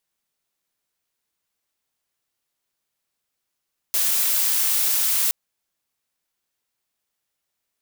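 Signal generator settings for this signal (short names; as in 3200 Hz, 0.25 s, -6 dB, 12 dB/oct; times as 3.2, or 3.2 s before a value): noise blue, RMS -20.5 dBFS 1.37 s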